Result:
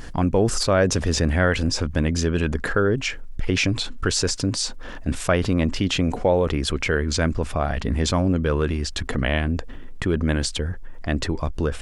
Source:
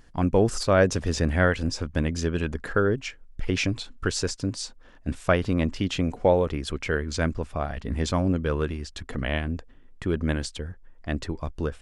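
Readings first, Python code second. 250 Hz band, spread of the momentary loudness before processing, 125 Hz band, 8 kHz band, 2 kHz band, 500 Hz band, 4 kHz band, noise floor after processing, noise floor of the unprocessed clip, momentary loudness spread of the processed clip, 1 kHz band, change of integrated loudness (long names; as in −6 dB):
+3.5 dB, 13 LU, +4.0 dB, +7.5 dB, +4.0 dB, +2.5 dB, +7.5 dB, −34 dBFS, −50 dBFS, 7 LU, +2.5 dB, +3.5 dB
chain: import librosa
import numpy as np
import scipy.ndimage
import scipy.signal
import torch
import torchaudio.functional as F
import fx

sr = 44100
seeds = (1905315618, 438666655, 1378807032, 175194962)

y = fx.env_flatten(x, sr, amount_pct=50)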